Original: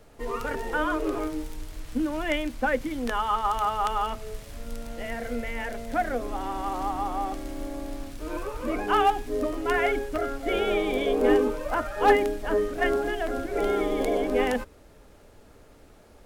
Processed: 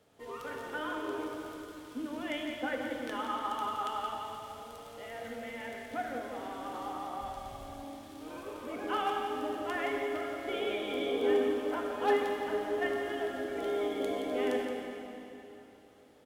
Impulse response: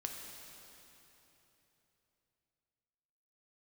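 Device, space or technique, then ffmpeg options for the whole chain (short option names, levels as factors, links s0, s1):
PA in a hall: -filter_complex "[0:a]highpass=120,equalizer=f=3300:t=o:w=0.31:g=6.5,aecho=1:1:172:0.376[s0];[1:a]atrim=start_sample=2205[s1];[s0][s1]afir=irnorm=-1:irlink=0,asplit=3[s2][s3][s4];[s2]afade=t=out:st=7.2:d=0.02[s5];[s3]asubboost=boost=7:cutoff=97,afade=t=in:st=7.2:d=0.02,afade=t=out:st=7.82:d=0.02[s6];[s4]afade=t=in:st=7.82:d=0.02[s7];[s5][s6][s7]amix=inputs=3:normalize=0,volume=0.376"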